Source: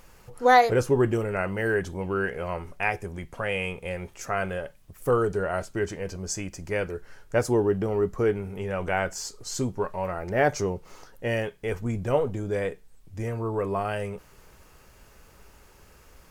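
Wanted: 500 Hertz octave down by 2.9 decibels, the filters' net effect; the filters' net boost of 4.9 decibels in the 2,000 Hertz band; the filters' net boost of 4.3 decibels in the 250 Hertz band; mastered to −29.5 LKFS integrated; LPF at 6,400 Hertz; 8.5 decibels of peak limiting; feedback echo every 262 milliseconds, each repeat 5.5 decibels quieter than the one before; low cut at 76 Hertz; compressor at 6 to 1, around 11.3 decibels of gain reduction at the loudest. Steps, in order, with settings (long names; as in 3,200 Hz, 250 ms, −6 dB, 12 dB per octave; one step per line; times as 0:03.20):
high-pass filter 76 Hz
low-pass filter 6,400 Hz
parametric band 250 Hz +8 dB
parametric band 500 Hz −6.5 dB
parametric band 2,000 Hz +6.5 dB
downward compressor 6 to 1, threshold −24 dBFS
brickwall limiter −21 dBFS
repeating echo 262 ms, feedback 53%, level −5.5 dB
level +2.5 dB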